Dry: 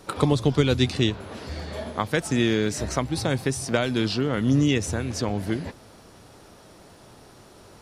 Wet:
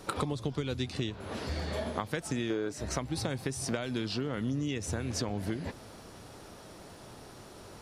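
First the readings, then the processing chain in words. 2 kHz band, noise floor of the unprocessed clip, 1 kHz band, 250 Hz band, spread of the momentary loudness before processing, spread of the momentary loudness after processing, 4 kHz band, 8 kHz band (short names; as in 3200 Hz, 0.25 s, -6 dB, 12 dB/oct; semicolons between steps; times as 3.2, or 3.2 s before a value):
-10.0 dB, -50 dBFS, -8.0 dB, -10.5 dB, 12 LU, 16 LU, -9.5 dB, -6.5 dB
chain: spectral gain 2.5–2.72, 260–1600 Hz +10 dB; compressor 12:1, threshold -29 dBFS, peak gain reduction 18 dB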